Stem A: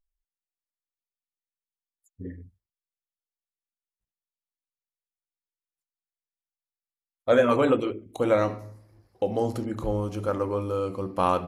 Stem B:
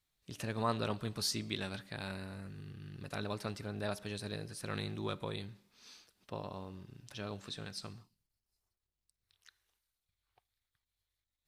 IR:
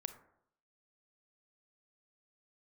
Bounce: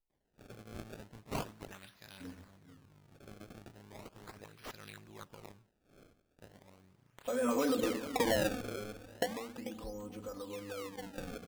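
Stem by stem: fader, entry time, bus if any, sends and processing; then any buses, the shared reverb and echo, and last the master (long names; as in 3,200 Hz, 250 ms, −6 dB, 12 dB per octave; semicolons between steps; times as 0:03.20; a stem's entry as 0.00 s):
0:07.12 −13 dB → 0:07.46 0 dB → 0:09.18 0 dB → 0:09.42 −12.5 dB, 0.00 s, no send, echo send −12 dB, comb filter 4 ms, depth 99%; brickwall limiter −13.5 dBFS, peak gain reduction 9 dB; downward compressor 5 to 1, threshold −29 dBFS, peak gain reduction 10.5 dB
−1.0 dB, 0.10 s, no send, no echo send, first-order pre-emphasis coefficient 0.8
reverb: not used
echo: repeating echo 441 ms, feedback 18%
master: high-shelf EQ 8,600 Hz +5.5 dB; sample-and-hold swept by an LFO 26×, swing 160% 0.37 Hz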